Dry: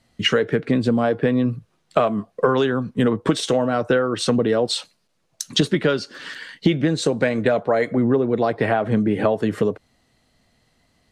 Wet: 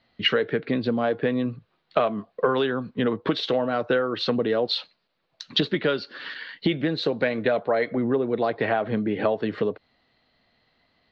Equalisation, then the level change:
Chebyshev low-pass filter 4,300 Hz, order 4
low-shelf EQ 240 Hz −10 dB
dynamic equaliser 1,200 Hz, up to −3 dB, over −35 dBFS, Q 0.71
0.0 dB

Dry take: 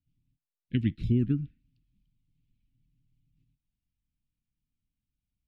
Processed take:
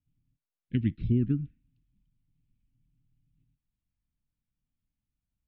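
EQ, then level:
high-frequency loss of the air 280 metres
0.0 dB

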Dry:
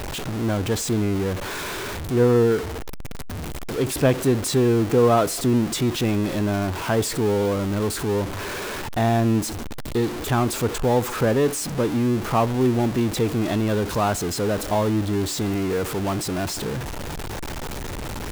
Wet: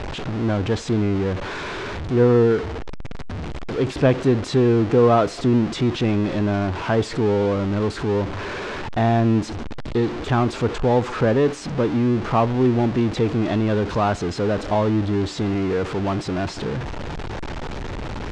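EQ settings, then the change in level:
Bessel low-pass filter 7,400 Hz, order 2
high-frequency loss of the air 120 metres
+2.0 dB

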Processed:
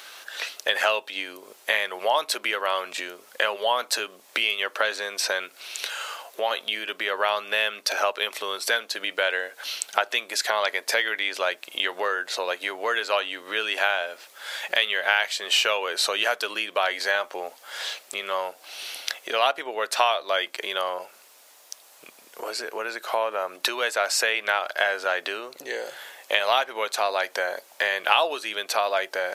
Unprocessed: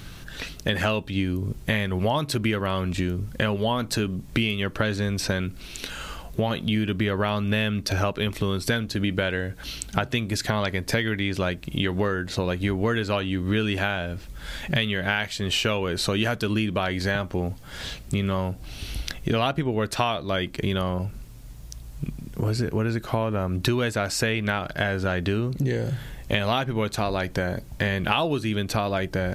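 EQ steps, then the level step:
high-pass filter 550 Hz 24 dB per octave
+4.0 dB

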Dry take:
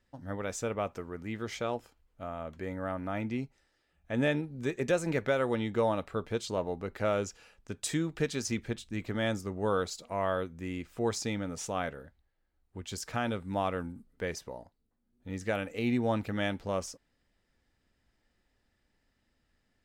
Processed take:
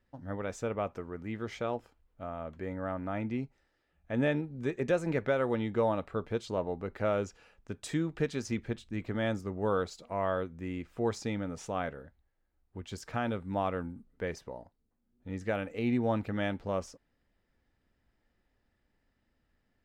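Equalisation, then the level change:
high-shelf EQ 3,800 Hz −11.5 dB
0.0 dB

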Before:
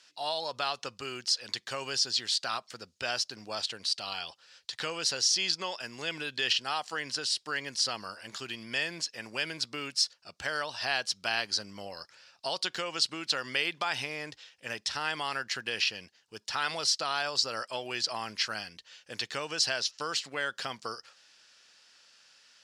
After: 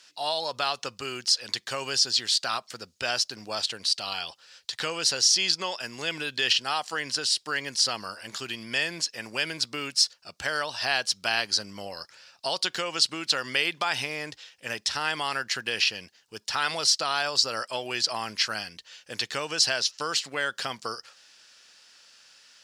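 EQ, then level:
high-shelf EQ 10,000 Hz +7.5 dB
+4.0 dB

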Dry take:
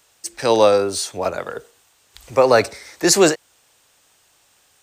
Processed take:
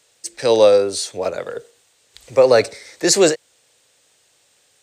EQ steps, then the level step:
octave-band graphic EQ 125/250/500/2,000/4,000/8,000 Hz +8/+4/+12/+7/+8/+9 dB
−10.0 dB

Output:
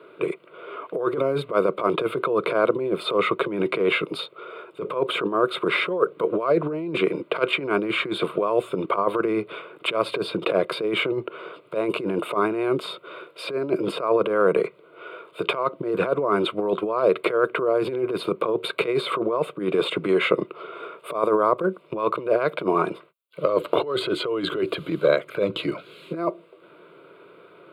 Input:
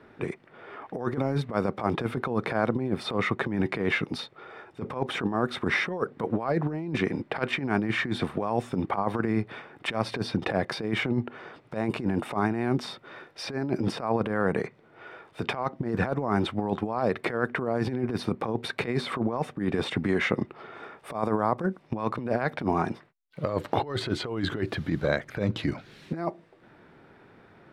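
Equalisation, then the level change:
high-pass filter 210 Hz 24 dB per octave
low-shelf EQ 280 Hz +7 dB
phaser with its sweep stopped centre 1,200 Hz, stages 8
+8.0 dB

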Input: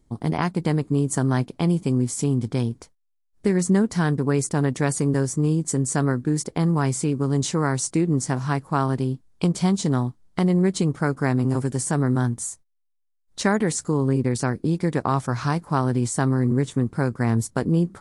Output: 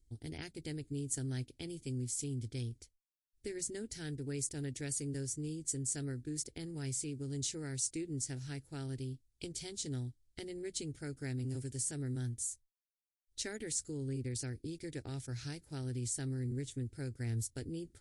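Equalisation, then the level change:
guitar amp tone stack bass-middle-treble 6-0-2
phaser with its sweep stopped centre 450 Hz, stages 4
+6.5 dB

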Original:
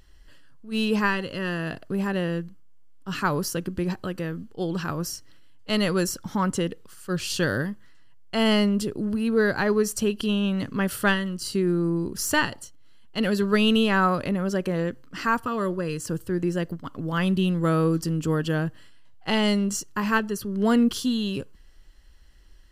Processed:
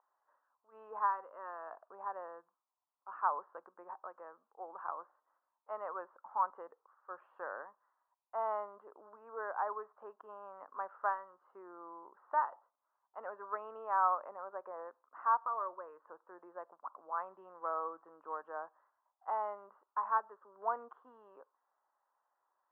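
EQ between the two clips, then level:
high-pass filter 850 Hz 24 dB per octave
Butterworth low-pass 1,100 Hz 36 dB per octave
0.0 dB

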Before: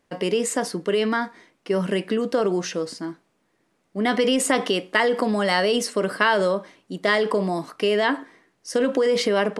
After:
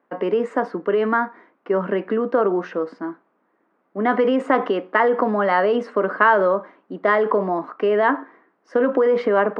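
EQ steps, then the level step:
high-pass filter 210 Hz 24 dB per octave
low-pass with resonance 1,300 Hz, resonance Q 1.7
+2.0 dB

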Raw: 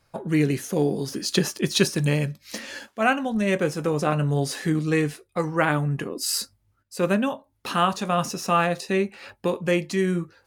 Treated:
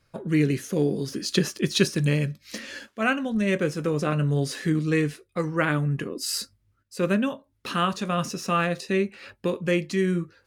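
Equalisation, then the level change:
parametric band 810 Hz −9.5 dB 0.69 octaves
high-shelf EQ 7,000 Hz −6.5 dB
0.0 dB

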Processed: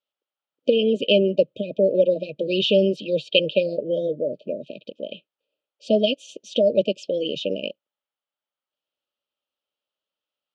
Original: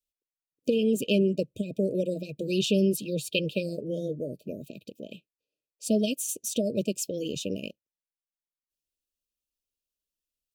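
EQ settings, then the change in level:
loudspeaker in its box 200–4,300 Hz, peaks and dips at 580 Hz +7 dB, 840 Hz +8 dB, 1,300 Hz +10 dB, 3,100 Hz +9 dB
parametric band 550 Hz +3.5 dB 0.6 octaves
+3.0 dB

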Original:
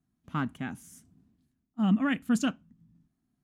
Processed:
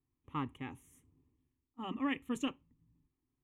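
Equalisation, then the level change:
dynamic equaliser 5,100 Hz, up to +5 dB, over −53 dBFS, Q 0.72
high-shelf EQ 3,300 Hz −10.5 dB
phaser with its sweep stopped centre 1,000 Hz, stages 8
−1.0 dB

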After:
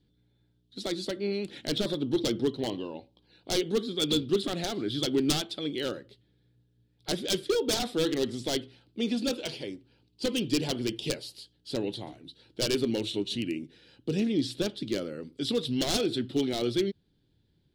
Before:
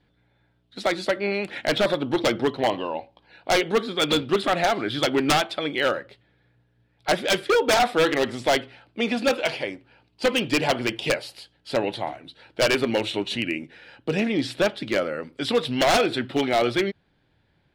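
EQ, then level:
flat-topped bell 1,200 Hz −14 dB 2.5 octaves
−2.5 dB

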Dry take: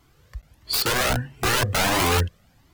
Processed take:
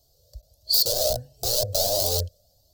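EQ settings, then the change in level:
drawn EQ curve 100 Hz 0 dB, 160 Hz −9 dB, 320 Hz −13 dB, 610 Hz +13 dB, 970 Hz −18 dB, 2,200 Hz −27 dB, 4,400 Hz +11 dB, 10,000 Hz +5 dB, 14,000 Hz +12 dB
−6.0 dB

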